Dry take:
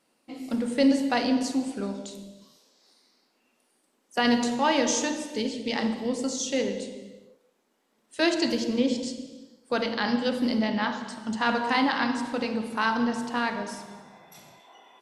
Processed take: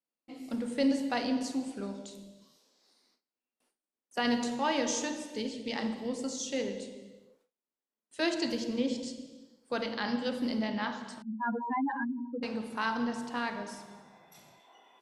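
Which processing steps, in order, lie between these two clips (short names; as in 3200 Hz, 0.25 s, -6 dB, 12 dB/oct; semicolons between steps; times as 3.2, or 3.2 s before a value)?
11.22–12.43 spectral contrast raised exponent 3.9; gate with hold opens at -54 dBFS; gain -6.5 dB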